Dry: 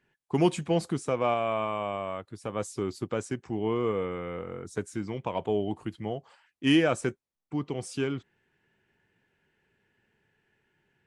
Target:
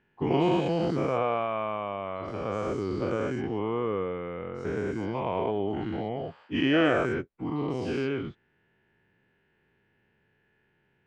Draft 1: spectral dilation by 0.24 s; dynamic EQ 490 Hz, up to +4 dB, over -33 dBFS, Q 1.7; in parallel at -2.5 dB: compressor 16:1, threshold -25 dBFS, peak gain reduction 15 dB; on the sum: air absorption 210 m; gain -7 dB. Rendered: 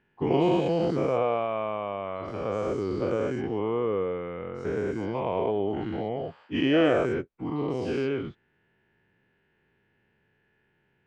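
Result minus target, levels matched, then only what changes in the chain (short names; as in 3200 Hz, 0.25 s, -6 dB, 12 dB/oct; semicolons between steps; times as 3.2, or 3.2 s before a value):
2000 Hz band -3.5 dB
change: dynamic EQ 1500 Hz, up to +4 dB, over -33 dBFS, Q 1.7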